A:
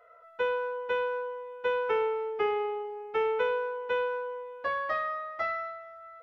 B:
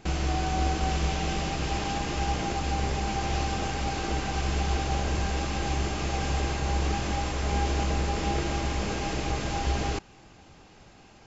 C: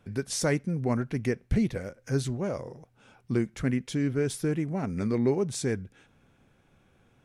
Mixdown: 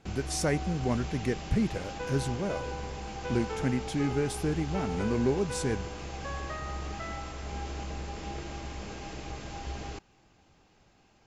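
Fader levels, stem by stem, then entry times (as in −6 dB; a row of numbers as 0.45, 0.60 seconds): −10.0, −10.5, −2.0 decibels; 1.60, 0.00, 0.00 seconds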